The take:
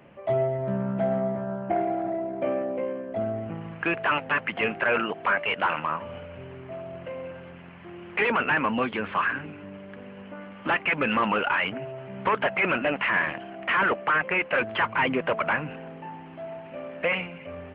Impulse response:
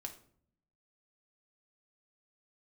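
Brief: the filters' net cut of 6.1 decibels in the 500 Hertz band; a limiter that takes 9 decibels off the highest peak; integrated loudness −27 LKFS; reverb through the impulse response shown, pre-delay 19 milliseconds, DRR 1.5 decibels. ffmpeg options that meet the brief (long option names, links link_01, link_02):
-filter_complex "[0:a]equalizer=frequency=500:width_type=o:gain=-8.5,alimiter=limit=-23.5dB:level=0:latency=1,asplit=2[link_01][link_02];[1:a]atrim=start_sample=2205,adelay=19[link_03];[link_02][link_03]afir=irnorm=-1:irlink=0,volume=2dB[link_04];[link_01][link_04]amix=inputs=2:normalize=0,volume=4dB"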